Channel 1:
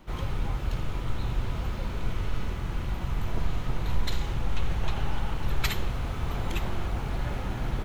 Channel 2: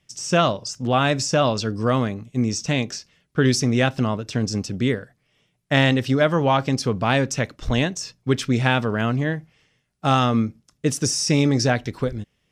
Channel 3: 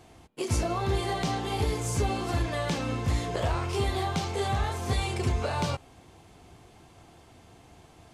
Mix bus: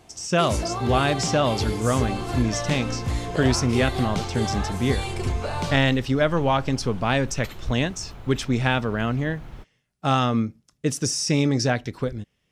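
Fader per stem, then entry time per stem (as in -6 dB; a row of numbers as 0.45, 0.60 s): -10.5, -2.5, +1.0 dB; 1.80, 0.00, 0.00 s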